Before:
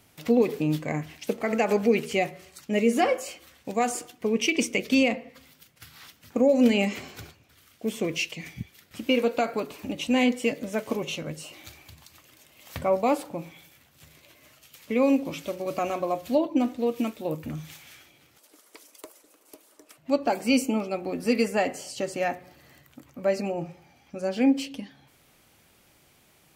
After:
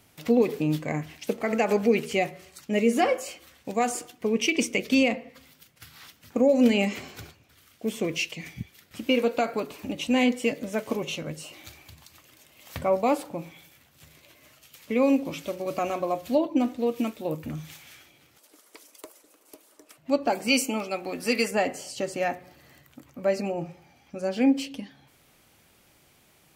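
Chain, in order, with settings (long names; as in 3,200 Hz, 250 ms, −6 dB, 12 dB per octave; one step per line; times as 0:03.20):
0:20.48–0:21.51: tilt shelving filter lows −5.5 dB, about 680 Hz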